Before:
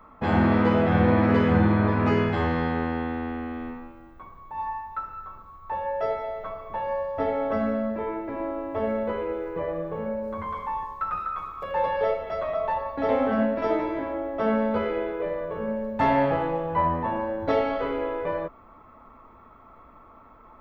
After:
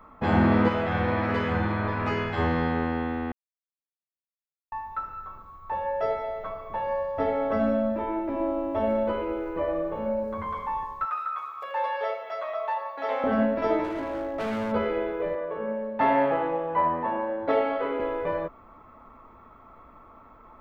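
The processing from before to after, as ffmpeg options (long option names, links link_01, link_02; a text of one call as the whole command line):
ffmpeg -i in.wav -filter_complex "[0:a]asettb=1/sr,asplit=3[link_01][link_02][link_03];[link_01]atrim=end=0.684[link_04];[link_02]atrim=start=0.68:end=2.38,asetpts=PTS-STARTPTS,afade=type=in:duration=0.004:curve=qsin,afade=type=out:start_time=1.696:duration=0.004:curve=qsin,equalizer=frequency=210:width_type=o:width=2.9:gain=-9[link_05];[link_03]atrim=start=2.376[link_06];[link_04][link_05]acrossfade=duration=0.004:curve1=hsin:curve2=qsin[link_07];[link_07][link_06]acrossfade=duration=0.004:curve1=qsin:curve2=hsin,asettb=1/sr,asplit=3[link_08][link_09][link_10];[link_08]atrim=end=7.594[link_11];[link_09]atrim=start=7.59:end=10.24,asetpts=PTS-STARTPTS,afade=type=in:duration=0.004:curve=qsin,afade=type=out:start_time=2.646:duration=0.004:curve=qsin,aecho=1:1:3.3:0.65,atrim=end_sample=116865[link_12];[link_10]atrim=start=10.236[link_13];[link_11][link_12]acrossfade=duration=0.004:curve1=hsin:curve2=qsin[link_14];[link_14][link_13]acrossfade=duration=0.004:curve1=qsin:curve2=hsin,asettb=1/sr,asplit=3[link_15][link_16][link_17];[link_15]atrim=end=11.054[link_18];[link_16]atrim=start=11.05:end=13.24,asetpts=PTS-STARTPTS,afade=type=in:duration=0.004:curve=qsin,afade=type=out:start_time=2.186:duration=0.004:curve=qsin,highpass=730[link_19];[link_17]atrim=start=13.236[link_20];[link_18][link_19]acrossfade=duration=0.004:curve1=hsin:curve2=qsin[link_21];[link_21][link_20]acrossfade=duration=0.004:curve1=qsin:curve2=hsin,asplit=3[link_22][link_23][link_24];[link_22]afade=type=out:start_time=13.83:duration=0.02[link_25];[link_23]volume=27dB,asoftclip=hard,volume=-27dB,afade=type=in:start_time=13.83:duration=0.02,afade=type=out:start_time=14.71:duration=0.02[link_26];[link_24]afade=type=in:start_time=14.71:duration=0.02[link_27];[link_25][link_26][link_27]amix=inputs=3:normalize=0,asettb=1/sr,asplit=3[link_28][link_29][link_30];[link_28]atrim=end=15.354[link_31];[link_29]atrim=start=15.35:end=18,asetpts=PTS-STARTPTS,afade=type=in:duration=0.004:curve=qsin,afade=type=out:start_time=2.646:duration=0.004:curve=qsin,acrossover=split=220 3700:gain=0.178 1 0.126[link_32][link_33][link_34];[link_32][link_33][link_34]amix=inputs=3:normalize=0[link_35];[link_30]atrim=start=17.996[link_36];[link_31][link_35]acrossfade=duration=0.004:curve1=hsin:curve2=qsin[link_37];[link_37][link_36]acrossfade=duration=0.004:curve1=qsin:curve2=hsin,asplit=3[link_38][link_39][link_40];[link_38]atrim=end=3.32,asetpts=PTS-STARTPTS,afade=type=out:start_time=3.316:duration=0.004:curve=hsin[link_41];[link_39]atrim=start=3.32:end=4.72,asetpts=PTS-STARTPTS,volume=0[link_42];[link_40]atrim=start=4.72,asetpts=PTS-STARTPTS,afade=type=in:duration=0.004:curve=hsin[link_43];[link_41][link_42][link_43]concat=n=3:v=0:a=1" out.wav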